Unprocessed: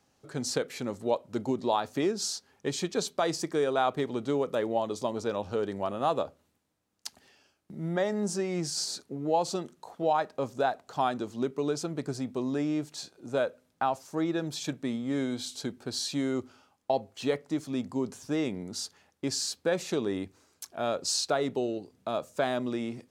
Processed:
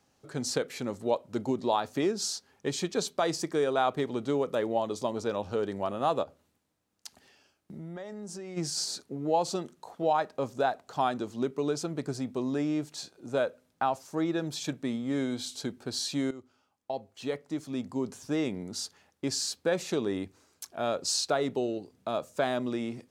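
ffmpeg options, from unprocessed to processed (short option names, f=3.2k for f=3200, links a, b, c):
-filter_complex "[0:a]asplit=3[a][b][c];[a]afade=t=out:st=6.23:d=0.02[d];[b]acompressor=threshold=-38dB:ratio=6:attack=3.2:release=140:knee=1:detection=peak,afade=t=in:st=6.23:d=0.02,afade=t=out:st=8.56:d=0.02[e];[c]afade=t=in:st=8.56:d=0.02[f];[d][e][f]amix=inputs=3:normalize=0,asplit=2[g][h];[g]atrim=end=16.31,asetpts=PTS-STARTPTS,afade=t=out:st=16.306:d=0.004:c=hsin:silence=0.177828[i];[h]atrim=start=16.31,asetpts=PTS-STARTPTS,afade=t=in:d=1.95:silence=0.177828[j];[i][j]concat=n=2:v=0:a=1"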